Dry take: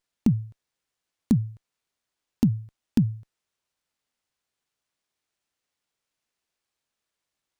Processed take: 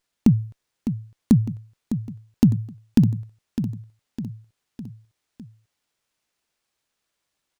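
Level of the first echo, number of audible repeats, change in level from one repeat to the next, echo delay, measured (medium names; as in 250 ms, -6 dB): -10.0 dB, 4, -5.5 dB, 606 ms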